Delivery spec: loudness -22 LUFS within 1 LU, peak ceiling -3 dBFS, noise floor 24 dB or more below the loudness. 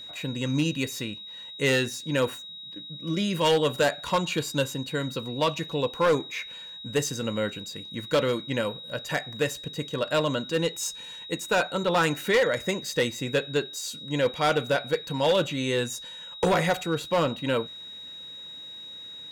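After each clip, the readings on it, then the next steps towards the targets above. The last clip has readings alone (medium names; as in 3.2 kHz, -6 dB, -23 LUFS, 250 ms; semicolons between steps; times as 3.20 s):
clipped samples 1.1%; clipping level -17.0 dBFS; steady tone 3.8 kHz; tone level -39 dBFS; loudness -27.0 LUFS; peak level -17.0 dBFS; loudness target -22.0 LUFS
-> clip repair -17 dBFS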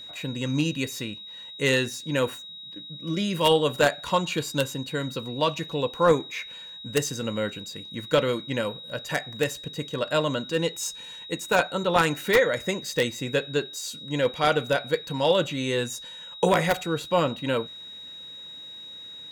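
clipped samples 0.0%; steady tone 3.8 kHz; tone level -39 dBFS
-> band-stop 3.8 kHz, Q 30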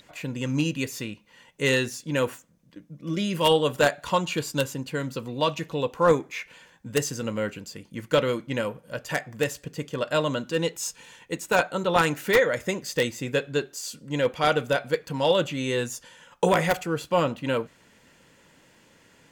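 steady tone not found; loudness -26.0 LUFS; peak level -7.5 dBFS; loudness target -22.0 LUFS
-> trim +4 dB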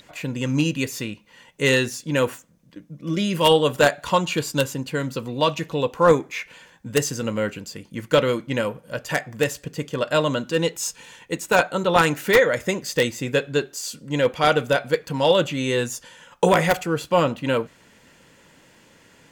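loudness -22.0 LUFS; peak level -3.5 dBFS; noise floor -54 dBFS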